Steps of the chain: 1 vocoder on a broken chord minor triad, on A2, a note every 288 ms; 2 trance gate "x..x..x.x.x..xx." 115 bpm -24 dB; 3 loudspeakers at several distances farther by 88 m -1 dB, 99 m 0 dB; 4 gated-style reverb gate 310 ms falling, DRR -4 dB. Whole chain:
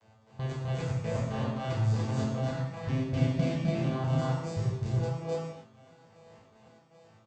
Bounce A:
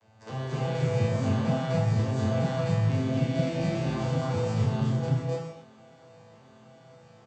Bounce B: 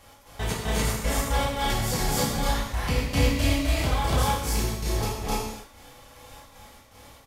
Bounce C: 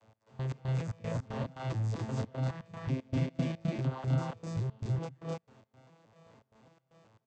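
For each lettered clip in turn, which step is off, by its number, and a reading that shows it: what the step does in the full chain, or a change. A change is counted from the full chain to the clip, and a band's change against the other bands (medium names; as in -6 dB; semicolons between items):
2, loudness change +3.5 LU; 1, 4 kHz band +11.5 dB; 4, echo-to-direct 9.5 dB to 2.5 dB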